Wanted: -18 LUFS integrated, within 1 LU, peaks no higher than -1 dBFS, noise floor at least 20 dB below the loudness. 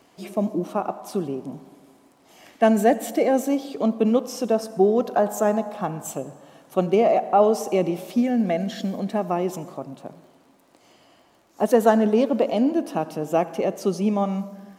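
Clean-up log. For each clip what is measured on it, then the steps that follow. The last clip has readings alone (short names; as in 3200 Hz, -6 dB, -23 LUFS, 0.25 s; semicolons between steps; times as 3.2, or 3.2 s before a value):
ticks 26/s; loudness -22.5 LUFS; peak -4.0 dBFS; loudness target -18.0 LUFS
-> de-click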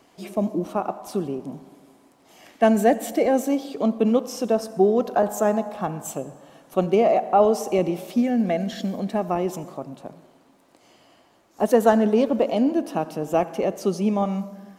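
ticks 0.068/s; loudness -22.5 LUFS; peak -4.0 dBFS; loudness target -18.0 LUFS
-> gain +4.5 dB; limiter -1 dBFS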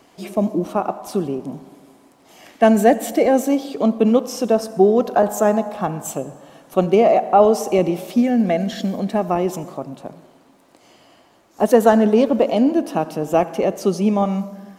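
loudness -18.0 LUFS; peak -1.0 dBFS; noise floor -53 dBFS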